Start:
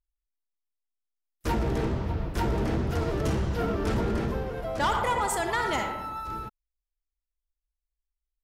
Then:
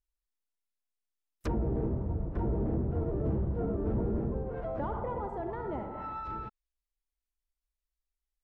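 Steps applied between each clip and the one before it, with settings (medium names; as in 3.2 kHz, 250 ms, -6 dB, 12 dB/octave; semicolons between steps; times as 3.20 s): low-pass that closes with the level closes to 590 Hz, closed at -26.5 dBFS; trim -3 dB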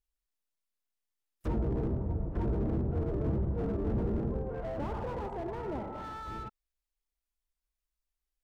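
slew-rate limiter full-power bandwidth 11 Hz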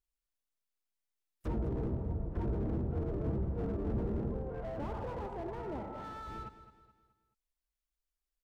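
feedback delay 213 ms, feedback 42%, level -13.5 dB; trim -3.5 dB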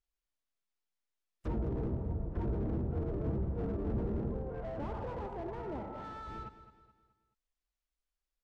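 distance through air 53 m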